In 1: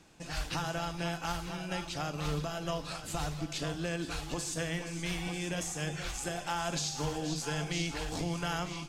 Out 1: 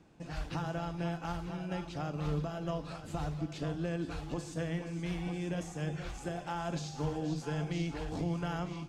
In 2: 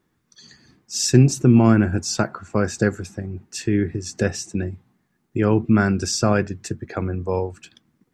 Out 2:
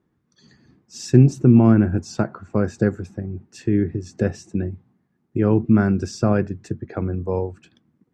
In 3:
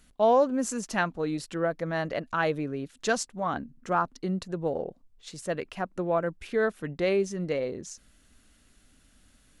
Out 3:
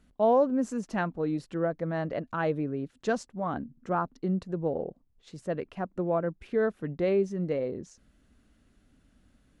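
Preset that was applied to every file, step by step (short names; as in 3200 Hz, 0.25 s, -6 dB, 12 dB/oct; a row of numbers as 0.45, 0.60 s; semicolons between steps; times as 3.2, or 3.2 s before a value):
HPF 210 Hz 6 dB/oct; tilt -3.5 dB/oct; gain -3.5 dB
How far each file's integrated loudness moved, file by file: -2.0, +0.5, -1.0 LU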